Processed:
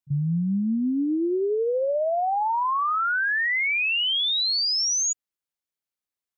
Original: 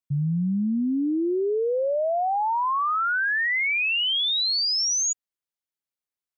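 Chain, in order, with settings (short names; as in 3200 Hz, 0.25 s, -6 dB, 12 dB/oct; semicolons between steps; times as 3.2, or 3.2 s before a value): pre-echo 35 ms -21 dB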